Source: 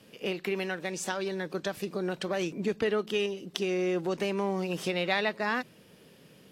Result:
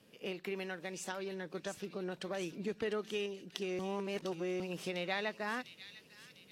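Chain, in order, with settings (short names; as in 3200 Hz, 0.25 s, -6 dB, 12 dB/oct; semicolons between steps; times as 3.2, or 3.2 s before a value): 1.12–2.12 high shelf 6800 Hz -9 dB; 3.79–4.6 reverse; thin delay 0.7 s, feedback 51%, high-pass 3500 Hz, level -6 dB; gain -8.5 dB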